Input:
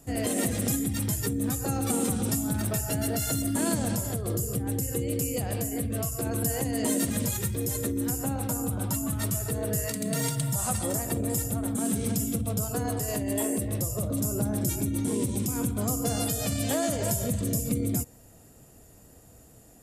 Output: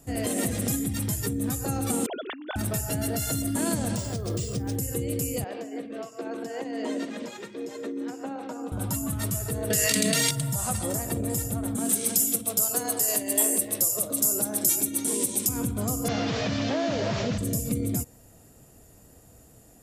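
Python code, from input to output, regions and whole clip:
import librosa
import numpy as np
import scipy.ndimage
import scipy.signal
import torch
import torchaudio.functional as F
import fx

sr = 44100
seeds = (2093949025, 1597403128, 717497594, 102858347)

y = fx.chain(x, sr, fx.sine_speech(),
    fx.over_compress(threshold_db=-34.0, ratio=-1.0),
    fx.tilt_eq(slope=2.5), at=(2.06, 2.56))
y = fx.chain(y, sr, fx.lowpass(hz=9600.0, slope=24),
    fx.resample_bad(factor=3, down='none', up='hold'), at=(3.96, 4.76))
y = fx.chain(y, sr, fx.highpass(hz=270.0, slope=24),
    fx.air_absorb(metres=180.0), at=(5.44, 8.72))
y = fx.chain(y, sr, fx.weighting(curve='D'),
    fx.env_flatten(amount_pct=100), at=(9.7, 10.31))
y = fx.chain(y, sr, fx.highpass(hz=290.0, slope=12),
    fx.high_shelf(hz=3600.0, db=11.5), at=(11.89, 15.49))
y = fx.chain(y, sr, fx.delta_mod(bps=32000, step_db=-36.0),
    fx.highpass(hz=130.0, slope=12),
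    fx.env_flatten(amount_pct=70), at=(16.08, 17.38))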